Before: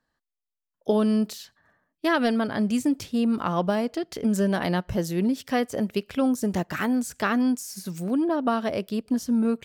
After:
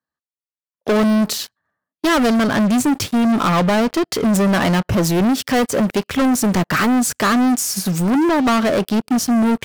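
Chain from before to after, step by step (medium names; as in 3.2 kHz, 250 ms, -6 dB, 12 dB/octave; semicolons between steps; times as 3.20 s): high-pass 66 Hz 24 dB/octave; peaking EQ 1.2 kHz +4.5 dB 0.47 oct; waveshaping leveller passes 5; trim -2 dB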